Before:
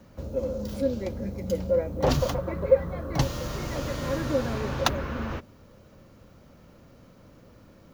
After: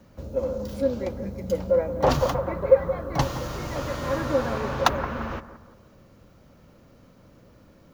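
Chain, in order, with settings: dynamic bell 1 kHz, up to +8 dB, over -40 dBFS, Q 0.76; bucket-brigade echo 172 ms, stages 2048, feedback 37%, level -13 dB; trim -1 dB

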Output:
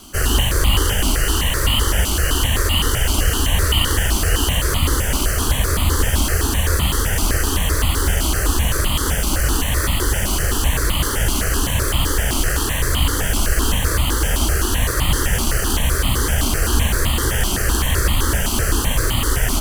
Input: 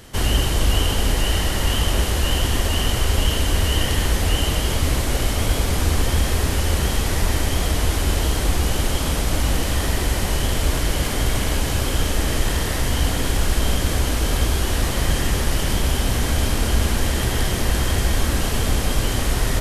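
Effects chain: comb filter that takes the minimum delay 0.65 ms; bass shelf 150 Hz -6.5 dB; stepped phaser 7.8 Hz 480–1600 Hz; trim +8.5 dB

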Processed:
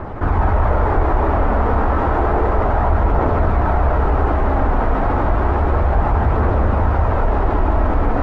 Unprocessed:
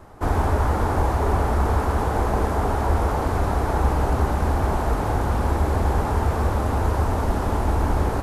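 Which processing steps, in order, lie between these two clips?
Chebyshev low-pass 2 kHz, order 2; phaser 0.31 Hz, delay 4.3 ms, feedback 33%; on a send at -1.5 dB: reverberation RT60 0.45 s, pre-delay 120 ms; on the sum: level flattener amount 50%

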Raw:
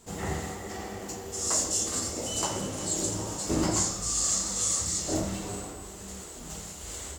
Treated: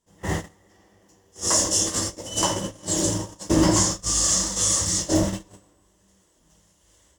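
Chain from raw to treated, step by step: gate -31 dBFS, range -27 dB; rippled EQ curve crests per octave 1.2, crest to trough 7 dB; trim +7 dB

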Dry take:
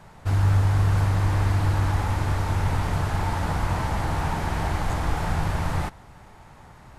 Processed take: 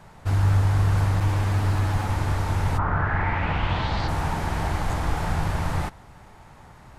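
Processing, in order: 1.20–2.09 s: comb filter that takes the minimum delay 9.4 ms; 2.77–4.07 s: resonant low-pass 1.2 kHz -> 4.7 kHz, resonance Q 3.4

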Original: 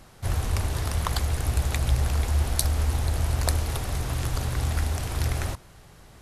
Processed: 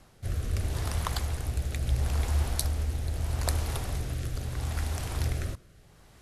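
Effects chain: rotary cabinet horn 0.75 Hz; trim -3 dB

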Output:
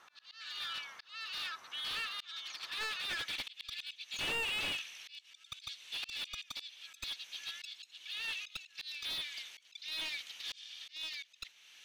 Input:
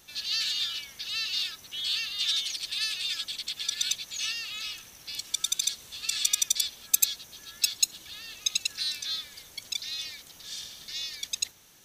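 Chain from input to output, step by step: slow attack 468 ms; band-pass sweep 1.2 kHz -> 2.7 kHz, 2.97–3.49 s; slew-rate limiter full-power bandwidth 17 Hz; trim +9.5 dB

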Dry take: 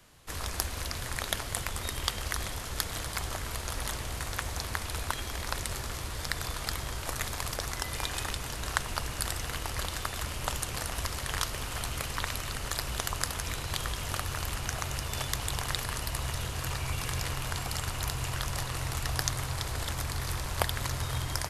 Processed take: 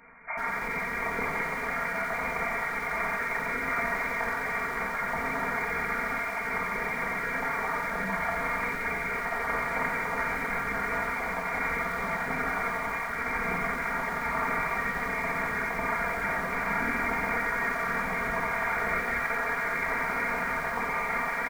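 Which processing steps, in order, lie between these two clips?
random holes in the spectrogram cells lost 21%; high-pass 230 Hz 24 dB/octave; band-stop 910 Hz, Q 25; comb 4.2 ms, depth 96%; compressor with a negative ratio -35 dBFS, ratio -0.5; early reflections 50 ms -13.5 dB, 69 ms -14 dB; gated-style reverb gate 500 ms falling, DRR -2 dB; frequency inversion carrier 2.6 kHz; bit-crushed delay 89 ms, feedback 80%, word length 7-bit, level -12 dB; trim +4.5 dB

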